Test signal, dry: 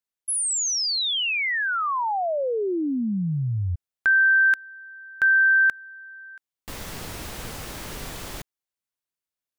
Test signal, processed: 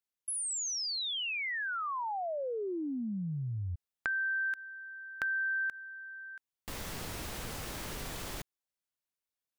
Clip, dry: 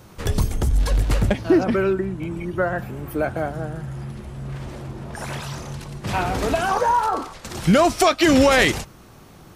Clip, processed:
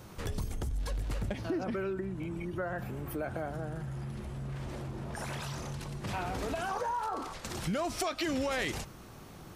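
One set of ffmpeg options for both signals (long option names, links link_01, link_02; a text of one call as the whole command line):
ffmpeg -i in.wav -af "acompressor=threshold=-35dB:ratio=2.5:attack=11:release=76:detection=peak,volume=-3.5dB" out.wav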